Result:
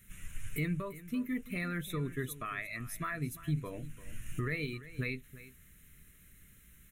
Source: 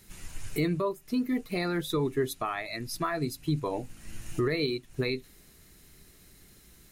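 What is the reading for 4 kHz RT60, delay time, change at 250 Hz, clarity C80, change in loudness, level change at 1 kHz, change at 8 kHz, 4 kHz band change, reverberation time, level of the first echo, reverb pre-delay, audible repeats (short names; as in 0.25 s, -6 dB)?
none, 0.343 s, -7.0 dB, none, -6.5 dB, -9.0 dB, -5.0 dB, -12.0 dB, none, -16.5 dB, none, 1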